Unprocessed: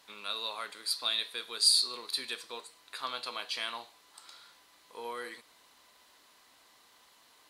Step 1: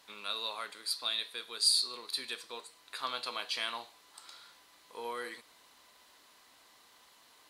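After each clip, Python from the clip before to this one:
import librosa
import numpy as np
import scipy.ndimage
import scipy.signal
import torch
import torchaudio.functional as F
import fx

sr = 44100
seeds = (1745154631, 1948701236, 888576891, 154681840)

y = fx.rider(x, sr, range_db=4, speed_s=2.0)
y = F.gain(torch.from_numpy(y), -3.5).numpy()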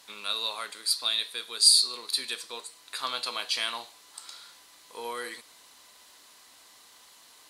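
y = fx.peak_eq(x, sr, hz=8400.0, db=7.5, octaves=2.0)
y = F.gain(torch.from_numpy(y), 3.0).numpy()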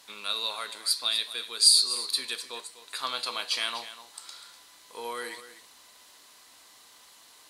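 y = x + 10.0 ** (-13.5 / 20.0) * np.pad(x, (int(248 * sr / 1000.0), 0))[:len(x)]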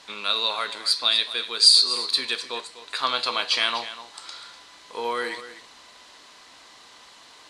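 y = fx.air_absorb(x, sr, metres=92.0)
y = F.gain(torch.from_numpy(y), 9.0).numpy()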